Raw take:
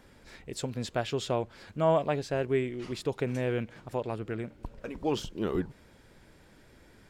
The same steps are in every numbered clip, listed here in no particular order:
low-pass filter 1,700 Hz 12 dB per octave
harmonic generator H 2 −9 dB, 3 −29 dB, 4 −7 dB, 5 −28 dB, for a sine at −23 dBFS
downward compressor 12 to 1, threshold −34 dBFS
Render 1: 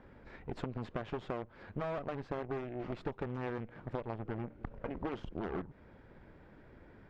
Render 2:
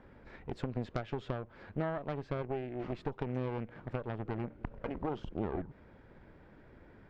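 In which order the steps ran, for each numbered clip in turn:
harmonic generator, then low-pass filter, then downward compressor
low-pass filter, then downward compressor, then harmonic generator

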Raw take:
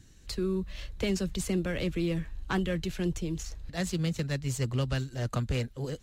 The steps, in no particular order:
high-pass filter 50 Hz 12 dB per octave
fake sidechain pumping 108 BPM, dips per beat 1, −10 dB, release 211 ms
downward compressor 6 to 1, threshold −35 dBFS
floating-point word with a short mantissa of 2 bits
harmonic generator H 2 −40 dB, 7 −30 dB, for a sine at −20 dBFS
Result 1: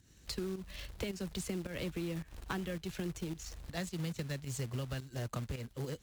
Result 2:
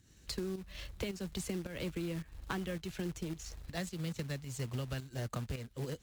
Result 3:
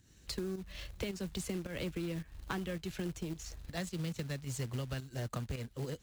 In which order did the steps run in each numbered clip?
fake sidechain pumping, then floating-point word with a short mantissa, then harmonic generator, then downward compressor, then high-pass filter
high-pass filter, then floating-point word with a short mantissa, then harmonic generator, then downward compressor, then fake sidechain pumping
high-pass filter, then harmonic generator, then floating-point word with a short mantissa, then fake sidechain pumping, then downward compressor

